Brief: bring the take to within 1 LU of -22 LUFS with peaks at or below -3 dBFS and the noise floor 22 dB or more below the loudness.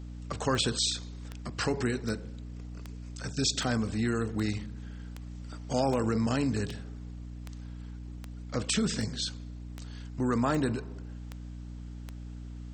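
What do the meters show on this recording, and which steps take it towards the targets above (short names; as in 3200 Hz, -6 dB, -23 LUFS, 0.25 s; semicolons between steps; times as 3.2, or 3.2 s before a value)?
clicks 16; hum 60 Hz; harmonics up to 300 Hz; hum level -39 dBFS; loudness -31.0 LUFS; peak -14.0 dBFS; loudness target -22.0 LUFS
-> de-click; notches 60/120/180/240/300 Hz; gain +9 dB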